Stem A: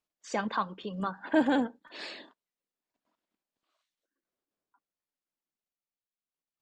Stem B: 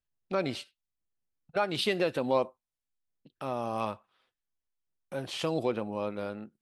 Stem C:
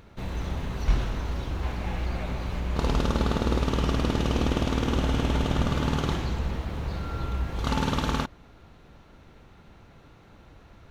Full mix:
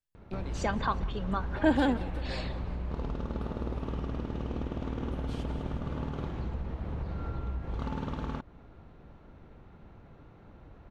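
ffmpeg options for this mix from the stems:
ffmpeg -i stem1.wav -i stem2.wav -i stem3.wav -filter_complex "[0:a]adelay=300,volume=0dB,asplit=2[link_01][link_02];[link_02]volume=-22dB[link_03];[1:a]acrossover=split=170[link_04][link_05];[link_05]acompressor=threshold=-39dB:ratio=3[link_06];[link_04][link_06]amix=inputs=2:normalize=0,volume=-2.5dB,asplit=2[link_07][link_08];[link_08]volume=-20dB[link_09];[2:a]lowpass=frequency=1000:poles=1,adelay=150,volume=0dB[link_10];[link_07][link_10]amix=inputs=2:normalize=0,acompressor=threshold=-31dB:ratio=6,volume=0dB[link_11];[link_03][link_09]amix=inputs=2:normalize=0,aecho=0:1:183|366|549|732|915|1098|1281|1464|1647:1|0.57|0.325|0.185|0.106|0.0602|0.0343|0.0195|0.0111[link_12];[link_01][link_11][link_12]amix=inputs=3:normalize=0" out.wav

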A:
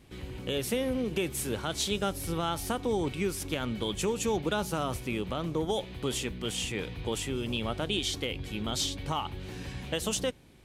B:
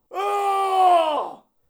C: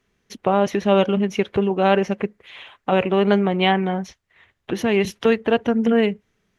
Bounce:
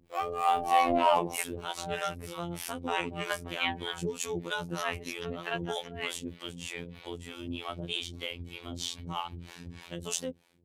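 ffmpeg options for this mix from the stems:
ffmpeg -i stem1.wav -i stem2.wav -i stem3.wav -filter_complex "[0:a]highpass=76,volume=-2dB[link_01];[1:a]acrossover=split=2600[link_02][link_03];[link_03]acompressor=threshold=-41dB:ratio=4:attack=1:release=60[link_04];[link_02][link_04]amix=inputs=2:normalize=0,asoftclip=type=tanh:threshold=-14.5dB,volume=2.5dB[link_05];[2:a]highpass=880,volume=-5.5dB[link_06];[link_01][link_05][link_06]amix=inputs=3:normalize=0,dynaudnorm=framelen=270:gausssize=5:maxgain=5dB,acrossover=split=490[link_07][link_08];[link_07]aeval=exprs='val(0)*(1-1/2+1/2*cos(2*PI*3.2*n/s))':channel_layout=same[link_09];[link_08]aeval=exprs='val(0)*(1-1/2-1/2*cos(2*PI*3.2*n/s))':channel_layout=same[link_10];[link_09][link_10]amix=inputs=2:normalize=0,afftfilt=real='hypot(re,im)*cos(PI*b)':imag='0':win_size=2048:overlap=0.75" out.wav

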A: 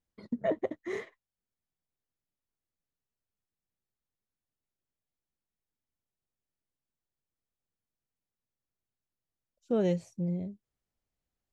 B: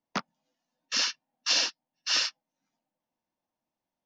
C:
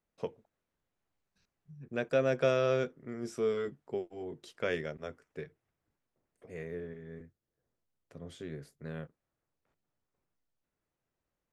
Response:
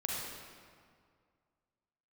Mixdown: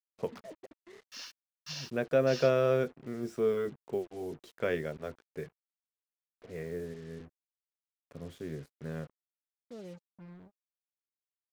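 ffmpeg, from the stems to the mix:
-filter_complex "[0:a]volume=-18.5dB,asplit=2[link_01][link_02];[1:a]adelay=200,volume=-17dB[link_03];[2:a]highshelf=frequency=2700:gain=-10,volume=2.5dB[link_04];[link_02]apad=whole_len=187704[link_05];[link_03][link_05]sidechaincompress=threshold=-49dB:ratio=8:attack=16:release=1290[link_06];[link_01][link_06][link_04]amix=inputs=3:normalize=0,acrusher=bits=8:mix=0:aa=0.5"

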